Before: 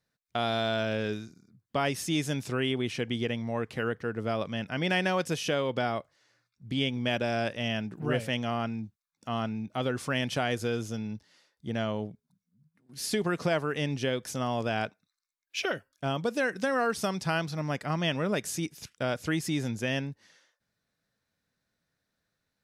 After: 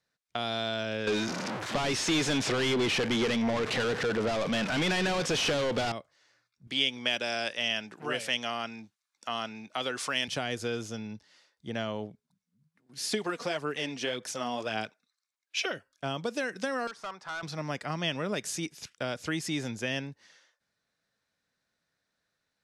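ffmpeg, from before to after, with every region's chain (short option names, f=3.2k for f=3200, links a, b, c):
-filter_complex "[0:a]asettb=1/sr,asplit=3[a][b][c];[a]atrim=end=1.074[d];[b]atrim=start=1.07:end=5.92,asetpts=PTS-STARTPTS,afade=t=in:d=0.004:c=qsin,afade=t=out:st=4.846:d=0.004:c=qsin,aeval=exprs='val(0)+0.5*0.0075*sgn(val(0))':c=same,acrossover=split=9100[e][f];[f]acompressor=threshold=-57dB:ratio=4:attack=1:release=60[g];[e][g]amix=inputs=2:normalize=0,asplit=2[h][i];[i]highpass=f=720:p=1,volume=32dB,asoftclip=type=tanh:threshold=-14.5dB[j];[h][j]amix=inputs=2:normalize=0,lowpass=f=1.6k:p=1,volume=-6dB[k];[c]atrim=start=5.916[l];[d][k]acrossfade=d=0.004:c1=hsin:c2=qsin[m];[m][l]acrossfade=d=0.004:c1=qsin:c2=hsin,asettb=1/sr,asplit=3[n][o][p];[n]atrim=end=6.674[q];[o]atrim=start=6.67:end=10.28,asetpts=PTS-STARTPTS,afade=t=in:d=0.004:c=qsin,afade=t=out:st=3.606:d=0.004:c=qsin,highpass=f=860:p=1,acontrast=65[r];[p]atrim=start=10.276[s];[q][r]acrossfade=d=0.004:c1=hsin:c2=qsin[t];[t][s]acrossfade=d=0.004:c1=qsin:c2=hsin,asettb=1/sr,asplit=3[u][v][w];[u]atrim=end=13.124[x];[v]atrim=start=13.12:end=15.66,asetpts=PTS-STARTPTS,afade=t=in:d=0.004:c=qsin,afade=t=out:st=2.536:d=0.004:c=qsin,highpass=f=260:p=1,aphaser=in_gain=1:out_gain=1:delay=4.3:decay=0.46:speed=1.8:type=sinusoidal[y];[w]atrim=start=15.656[z];[x][y]acrossfade=d=0.004:c1=hsin:c2=qsin[aa];[aa][z]acrossfade=d=0.004:c1=qsin:c2=hsin,asettb=1/sr,asplit=3[ab][ac][ad];[ab]atrim=end=16.874[ae];[ac]atrim=start=16.87:end=17.43,asetpts=PTS-STARTPTS,afade=t=in:d=0.004:c=qsin,afade=t=out:st=0.556:d=0.004:c=qsin,bandpass=f=2.4k:t=q:w=0.56,highshelf=f=1.9k:t=q:w=1.5:g=-11.5,asoftclip=type=hard:threshold=-34dB[af];[ad]atrim=start=17.426[ag];[ae][af]acrossfade=d=0.004:c1=hsin:c2=qsin[ah];[ah][ag]acrossfade=d=0.004:c1=qsin:c2=hsin,lowpass=8.9k,lowshelf=f=300:g=-9,acrossover=split=360|3000[ai][aj][ak];[aj]acompressor=threshold=-34dB:ratio=6[al];[ai][al][ak]amix=inputs=3:normalize=0,volume=2dB"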